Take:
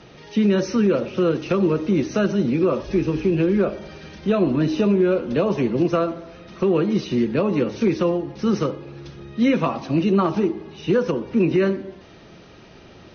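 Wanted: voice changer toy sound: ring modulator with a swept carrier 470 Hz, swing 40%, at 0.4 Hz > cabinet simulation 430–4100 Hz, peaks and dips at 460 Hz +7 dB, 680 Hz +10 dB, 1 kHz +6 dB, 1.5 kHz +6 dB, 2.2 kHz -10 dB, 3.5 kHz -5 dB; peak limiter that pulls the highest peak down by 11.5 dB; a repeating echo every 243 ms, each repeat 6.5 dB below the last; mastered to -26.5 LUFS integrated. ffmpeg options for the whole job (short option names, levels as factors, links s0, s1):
-af "alimiter=limit=0.0891:level=0:latency=1,aecho=1:1:243|486|729|972|1215|1458:0.473|0.222|0.105|0.0491|0.0231|0.0109,aeval=exprs='val(0)*sin(2*PI*470*n/s+470*0.4/0.4*sin(2*PI*0.4*n/s))':c=same,highpass=430,equalizer=f=460:t=q:w=4:g=7,equalizer=f=680:t=q:w=4:g=10,equalizer=f=1000:t=q:w=4:g=6,equalizer=f=1500:t=q:w=4:g=6,equalizer=f=2200:t=q:w=4:g=-10,equalizer=f=3500:t=q:w=4:g=-5,lowpass=f=4100:w=0.5412,lowpass=f=4100:w=1.3066,volume=1.06"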